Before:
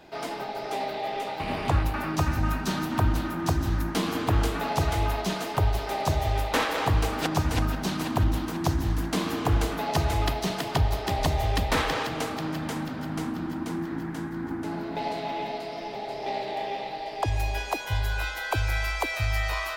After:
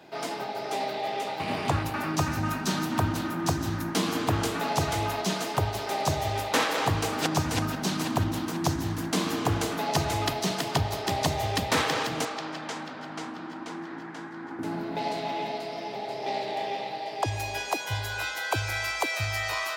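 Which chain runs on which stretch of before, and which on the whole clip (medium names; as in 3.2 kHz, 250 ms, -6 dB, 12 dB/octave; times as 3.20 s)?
12.25–14.59 s: high-pass 100 Hz + three-band isolator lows -13 dB, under 390 Hz, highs -21 dB, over 7.6 kHz
whole clip: dynamic bell 6.7 kHz, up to +5 dB, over -48 dBFS, Q 0.89; high-pass 96 Hz 24 dB/octave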